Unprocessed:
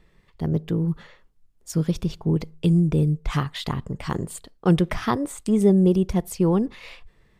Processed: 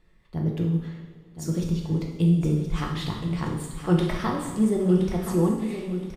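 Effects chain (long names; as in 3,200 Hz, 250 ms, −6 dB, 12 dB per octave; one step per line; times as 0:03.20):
tempo change 1.2×
repeating echo 1,021 ms, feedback 30%, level −10 dB
convolution reverb, pre-delay 3 ms, DRR −0.5 dB
level −6 dB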